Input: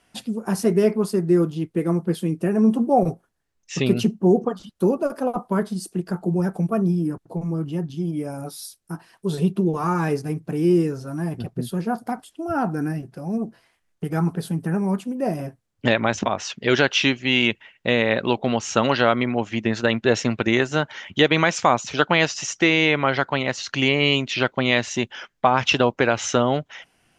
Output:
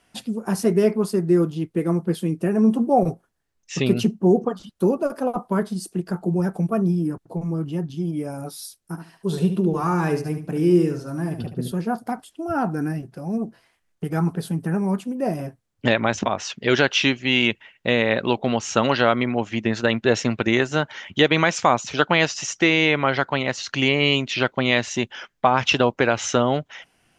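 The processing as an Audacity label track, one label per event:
8.800000	11.720000	feedback echo 73 ms, feedback 22%, level -9 dB

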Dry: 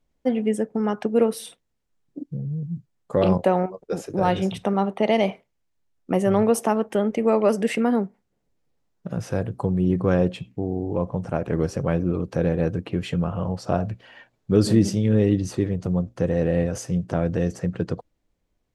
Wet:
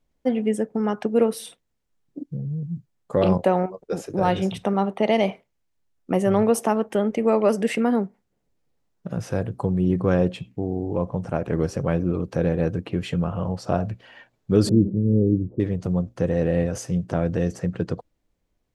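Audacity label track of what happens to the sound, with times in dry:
14.690000	15.600000	inverse Chebyshev low-pass stop band from 2700 Hz, stop band 80 dB

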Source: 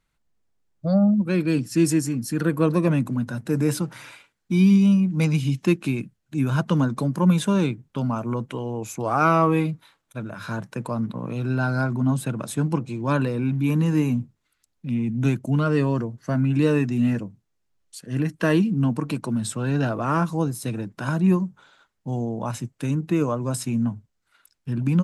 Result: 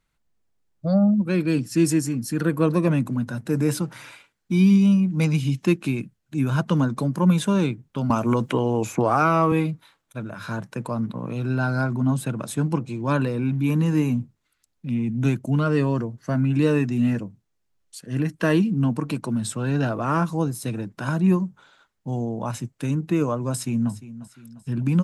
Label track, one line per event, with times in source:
8.100000	9.520000	three-band squash depth 100%
23.510000	23.920000	echo throw 0.35 s, feedback 50%, level -15.5 dB

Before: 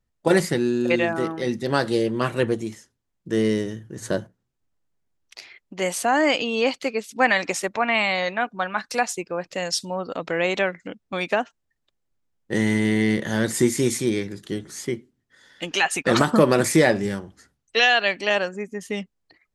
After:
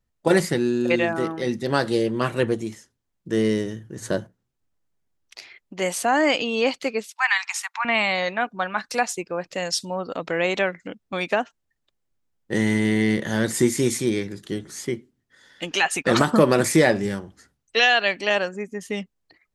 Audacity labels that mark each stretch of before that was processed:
7.080000	7.850000	steep high-pass 840 Hz 72 dB/oct

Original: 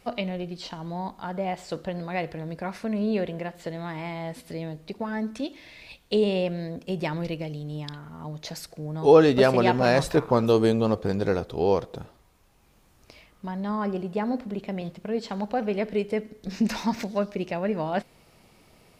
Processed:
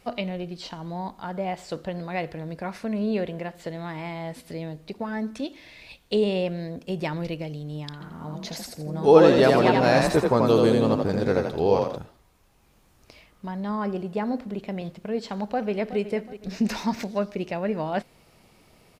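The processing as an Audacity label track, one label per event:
7.920000	11.980000	frequency-shifting echo 83 ms, feedback 34%, per repeat +37 Hz, level -3 dB
15.420000	15.990000	echo throw 0.37 s, feedback 40%, level -13.5 dB

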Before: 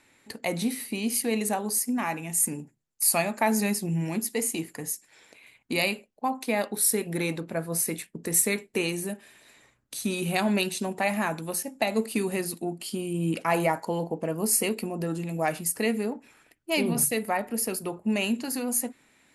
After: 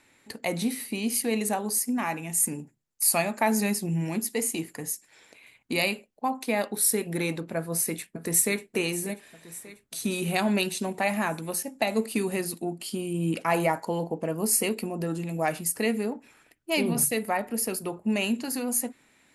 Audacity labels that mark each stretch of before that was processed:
7.560000	8.710000	echo throw 0.59 s, feedback 60%, level -15 dB

